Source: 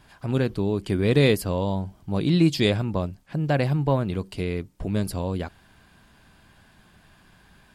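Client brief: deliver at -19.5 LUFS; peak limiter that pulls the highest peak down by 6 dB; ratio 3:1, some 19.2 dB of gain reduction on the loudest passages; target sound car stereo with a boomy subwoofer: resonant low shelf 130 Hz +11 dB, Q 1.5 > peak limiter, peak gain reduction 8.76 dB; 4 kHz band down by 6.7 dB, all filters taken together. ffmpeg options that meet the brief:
-af "equalizer=f=4000:t=o:g=-8,acompressor=threshold=0.00891:ratio=3,alimiter=level_in=2.37:limit=0.0631:level=0:latency=1,volume=0.422,lowshelf=f=130:t=q:w=1.5:g=11,volume=9.44,alimiter=limit=0.316:level=0:latency=1"

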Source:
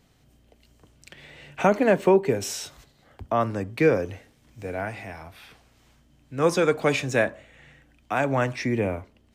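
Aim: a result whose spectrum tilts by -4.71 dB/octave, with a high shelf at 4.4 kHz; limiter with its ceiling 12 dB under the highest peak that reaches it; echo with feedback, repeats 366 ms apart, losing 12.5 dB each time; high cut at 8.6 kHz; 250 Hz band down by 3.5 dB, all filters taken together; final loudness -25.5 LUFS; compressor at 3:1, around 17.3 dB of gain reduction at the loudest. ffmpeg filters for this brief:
-af "lowpass=8600,equalizer=f=250:t=o:g=-5,highshelf=f=4400:g=-6.5,acompressor=threshold=0.01:ratio=3,alimiter=level_in=3.35:limit=0.0631:level=0:latency=1,volume=0.299,aecho=1:1:366|732|1098:0.237|0.0569|0.0137,volume=10"

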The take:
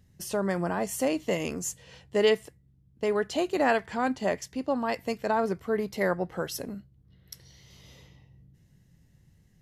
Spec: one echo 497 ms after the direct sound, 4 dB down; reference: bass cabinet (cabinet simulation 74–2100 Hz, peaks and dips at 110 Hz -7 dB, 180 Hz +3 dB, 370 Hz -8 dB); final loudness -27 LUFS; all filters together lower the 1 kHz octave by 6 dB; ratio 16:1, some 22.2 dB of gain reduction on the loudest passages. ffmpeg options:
-af "equalizer=f=1000:t=o:g=-8.5,acompressor=threshold=0.00891:ratio=16,highpass=f=74:w=0.5412,highpass=f=74:w=1.3066,equalizer=f=110:t=q:w=4:g=-7,equalizer=f=180:t=q:w=4:g=3,equalizer=f=370:t=q:w=4:g=-8,lowpass=f=2100:w=0.5412,lowpass=f=2100:w=1.3066,aecho=1:1:497:0.631,volume=10"

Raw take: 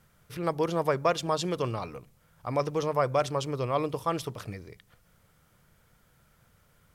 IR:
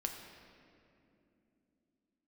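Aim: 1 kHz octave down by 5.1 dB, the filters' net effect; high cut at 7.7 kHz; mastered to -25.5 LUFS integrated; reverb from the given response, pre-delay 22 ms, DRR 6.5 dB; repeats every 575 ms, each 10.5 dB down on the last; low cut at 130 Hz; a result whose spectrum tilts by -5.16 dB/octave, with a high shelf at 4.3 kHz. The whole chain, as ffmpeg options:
-filter_complex "[0:a]highpass=130,lowpass=7700,equalizer=f=1000:t=o:g=-7,highshelf=f=4300:g=4,aecho=1:1:575|1150|1725:0.299|0.0896|0.0269,asplit=2[s0][s1];[1:a]atrim=start_sample=2205,adelay=22[s2];[s1][s2]afir=irnorm=-1:irlink=0,volume=0.447[s3];[s0][s3]amix=inputs=2:normalize=0,volume=1.88"

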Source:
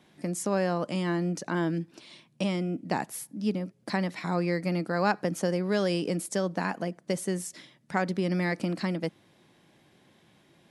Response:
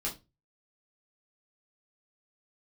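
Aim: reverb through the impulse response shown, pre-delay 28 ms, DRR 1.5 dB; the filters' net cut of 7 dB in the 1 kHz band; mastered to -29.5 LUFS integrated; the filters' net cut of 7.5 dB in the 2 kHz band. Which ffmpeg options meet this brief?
-filter_complex "[0:a]equalizer=f=1000:t=o:g=-8.5,equalizer=f=2000:t=o:g=-6.5,asplit=2[s0][s1];[1:a]atrim=start_sample=2205,adelay=28[s2];[s1][s2]afir=irnorm=-1:irlink=0,volume=0.596[s3];[s0][s3]amix=inputs=2:normalize=0,volume=0.75"

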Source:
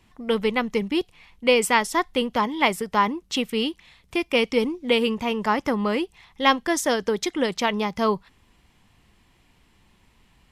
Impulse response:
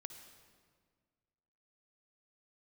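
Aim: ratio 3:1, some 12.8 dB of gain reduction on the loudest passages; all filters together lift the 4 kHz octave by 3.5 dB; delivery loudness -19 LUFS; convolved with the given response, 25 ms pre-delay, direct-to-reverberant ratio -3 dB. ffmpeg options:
-filter_complex "[0:a]equalizer=f=4000:t=o:g=5,acompressor=threshold=0.0282:ratio=3,asplit=2[s0][s1];[1:a]atrim=start_sample=2205,adelay=25[s2];[s1][s2]afir=irnorm=-1:irlink=0,volume=2.37[s3];[s0][s3]amix=inputs=2:normalize=0,volume=2.66"

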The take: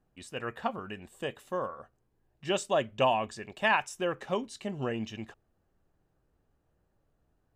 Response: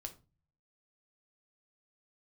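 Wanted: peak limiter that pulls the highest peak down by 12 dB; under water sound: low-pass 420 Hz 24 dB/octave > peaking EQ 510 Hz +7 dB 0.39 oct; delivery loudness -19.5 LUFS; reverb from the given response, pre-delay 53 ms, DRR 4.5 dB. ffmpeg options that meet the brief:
-filter_complex "[0:a]alimiter=level_in=1.12:limit=0.0631:level=0:latency=1,volume=0.891,asplit=2[s0][s1];[1:a]atrim=start_sample=2205,adelay=53[s2];[s1][s2]afir=irnorm=-1:irlink=0,volume=0.944[s3];[s0][s3]amix=inputs=2:normalize=0,lowpass=f=420:w=0.5412,lowpass=f=420:w=1.3066,equalizer=f=510:t=o:w=0.39:g=7,volume=10.6"

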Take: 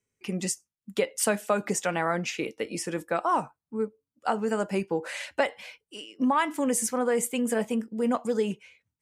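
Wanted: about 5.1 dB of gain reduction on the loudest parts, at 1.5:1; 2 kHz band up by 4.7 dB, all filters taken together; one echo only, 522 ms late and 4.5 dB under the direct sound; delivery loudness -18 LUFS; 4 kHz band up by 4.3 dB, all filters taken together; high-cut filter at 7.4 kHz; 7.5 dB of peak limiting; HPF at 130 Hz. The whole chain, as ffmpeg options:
-af "highpass=130,lowpass=7400,equalizer=f=2000:t=o:g=5,equalizer=f=4000:t=o:g=4.5,acompressor=threshold=0.0251:ratio=1.5,alimiter=limit=0.1:level=0:latency=1,aecho=1:1:522:0.596,volume=4.73"

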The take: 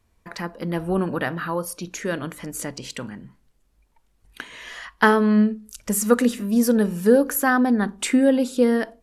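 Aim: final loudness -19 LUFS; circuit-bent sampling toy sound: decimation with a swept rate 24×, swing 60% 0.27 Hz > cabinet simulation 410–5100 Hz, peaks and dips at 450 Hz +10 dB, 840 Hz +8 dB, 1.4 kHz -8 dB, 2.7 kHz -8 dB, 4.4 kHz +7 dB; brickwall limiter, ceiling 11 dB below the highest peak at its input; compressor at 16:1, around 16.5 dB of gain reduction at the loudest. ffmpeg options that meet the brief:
-af "acompressor=threshold=0.0447:ratio=16,alimiter=level_in=1.12:limit=0.0631:level=0:latency=1,volume=0.891,acrusher=samples=24:mix=1:aa=0.000001:lfo=1:lforange=14.4:lforate=0.27,highpass=410,equalizer=f=450:t=q:w=4:g=10,equalizer=f=840:t=q:w=4:g=8,equalizer=f=1400:t=q:w=4:g=-8,equalizer=f=2700:t=q:w=4:g=-8,equalizer=f=4400:t=q:w=4:g=7,lowpass=f=5100:w=0.5412,lowpass=f=5100:w=1.3066,volume=6.68"

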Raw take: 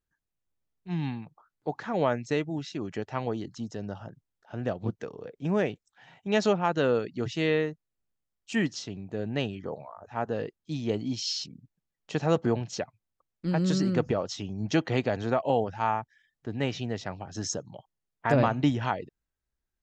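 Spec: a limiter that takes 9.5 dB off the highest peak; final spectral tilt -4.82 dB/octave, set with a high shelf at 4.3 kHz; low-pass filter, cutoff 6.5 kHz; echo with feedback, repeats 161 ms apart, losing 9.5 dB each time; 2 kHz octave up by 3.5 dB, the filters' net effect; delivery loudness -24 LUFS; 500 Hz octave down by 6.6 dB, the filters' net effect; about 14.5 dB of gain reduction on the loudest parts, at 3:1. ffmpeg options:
-af "lowpass=6500,equalizer=f=500:t=o:g=-8.5,equalizer=f=2000:t=o:g=4,highshelf=f=4300:g=4.5,acompressor=threshold=0.00891:ratio=3,alimiter=level_in=2.37:limit=0.0631:level=0:latency=1,volume=0.422,aecho=1:1:161|322|483|644:0.335|0.111|0.0365|0.012,volume=9.44"

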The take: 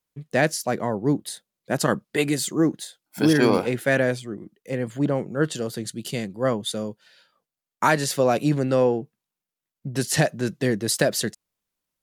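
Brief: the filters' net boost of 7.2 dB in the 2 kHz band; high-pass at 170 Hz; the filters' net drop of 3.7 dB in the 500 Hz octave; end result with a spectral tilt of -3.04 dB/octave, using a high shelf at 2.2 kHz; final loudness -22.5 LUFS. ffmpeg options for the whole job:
-af "highpass=170,equalizer=f=500:t=o:g=-5,equalizer=f=2000:t=o:g=7.5,highshelf=f=2200:g=3.5,volume=1.06"

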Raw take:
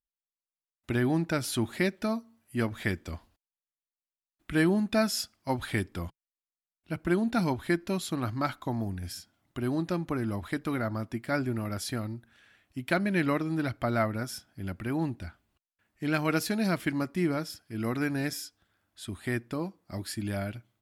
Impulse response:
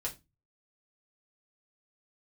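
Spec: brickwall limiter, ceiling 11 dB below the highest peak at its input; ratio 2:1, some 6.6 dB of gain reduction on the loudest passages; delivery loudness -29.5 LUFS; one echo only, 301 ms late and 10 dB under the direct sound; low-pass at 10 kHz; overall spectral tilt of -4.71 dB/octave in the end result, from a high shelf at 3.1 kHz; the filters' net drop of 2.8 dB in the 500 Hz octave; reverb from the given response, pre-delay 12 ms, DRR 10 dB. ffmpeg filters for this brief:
-filter_complex "[0:a]lowpass=10000,equalizer=f=500:t=o:g=-4.5,highshelf=f=3100:g=7,acompressor=threshold=0.02:ratio=2,alimiter=level_in=2:limit=0.0631:level=0:latency=1,volume=0.501,aecho=1:1:301:0.316,asplit=2[s0][s1];[1:a]atrim=start_sample=2205,adelay=12[s2];[s1][s2]afir=irnorm=-1:irlink=0,volume=0.282[s3];[s0][s3]amix=inputs=2:normalize=0,volume=2.99"

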